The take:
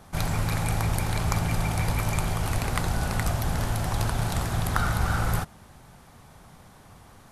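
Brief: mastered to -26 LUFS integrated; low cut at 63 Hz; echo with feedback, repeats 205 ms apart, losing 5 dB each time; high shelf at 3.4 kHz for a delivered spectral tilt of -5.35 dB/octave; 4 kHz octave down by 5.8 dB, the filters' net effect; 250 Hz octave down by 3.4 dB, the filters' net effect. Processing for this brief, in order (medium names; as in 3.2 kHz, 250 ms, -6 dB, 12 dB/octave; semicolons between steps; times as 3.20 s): high-pass 63 Hz; peaking EQ 250 Hz -6 dB; treble shelf 3.4 kHz -5.5 dB; peaking EQ 4 kHz -3.5 dB; feedback delay 205 ms, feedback 56%, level -5 dB; trim +3 dB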